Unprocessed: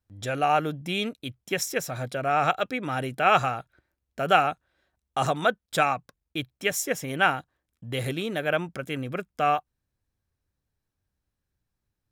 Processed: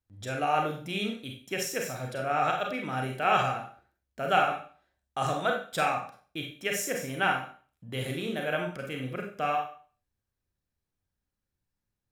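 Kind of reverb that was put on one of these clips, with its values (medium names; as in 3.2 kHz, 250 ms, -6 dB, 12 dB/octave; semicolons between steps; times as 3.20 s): Schroeder reverb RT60 0.41 s, combs from 31 ms, DRR 1 dB; trim -6 dB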